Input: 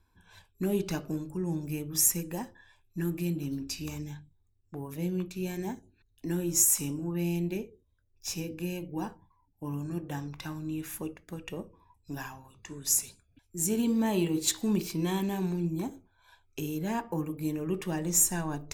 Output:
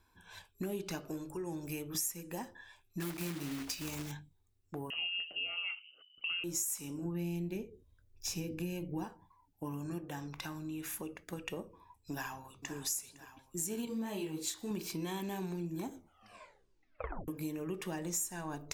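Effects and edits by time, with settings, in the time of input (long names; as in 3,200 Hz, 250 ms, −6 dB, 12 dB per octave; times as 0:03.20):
0:01.07–0:01.95: parametric band 200 Hz −13 dB 0.59 octaves
0:03.00–0:04.12: one scale factor per block 3 bits
0:04.90–0:06.44: voice inversion scrambler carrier 3,000 Hz
0:07.05–0:09.04: low-shelf EQ 240 Hz +11 dB
0:10.05–0:11.33: downward compressor 1.5 to 1, threshold −45 dBFS
0:12.11–0:12.74: delay throw 510 ms, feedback 80%, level −14.5 dB
0:13.85–0:14.71: micro pitch shift up and down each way 24 cents
0:15.93: tape stop 1.35 s
whole clip: low-shelf EQ 240 Hz −8.5 dB; downward compressor 4 to 1, threshold −41 dBFS; level +4 dB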